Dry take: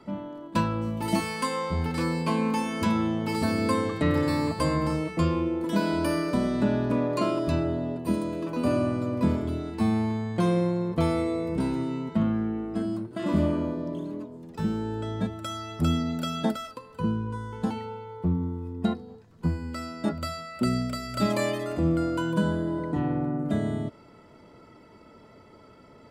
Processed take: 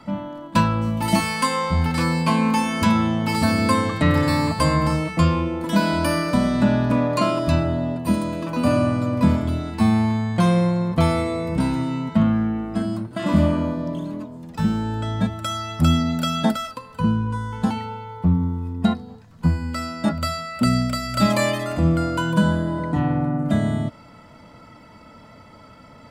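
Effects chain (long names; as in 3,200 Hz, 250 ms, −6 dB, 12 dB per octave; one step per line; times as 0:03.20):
parametric band 390 Hz −15 dB 0.49 octaves
level +8.5 dB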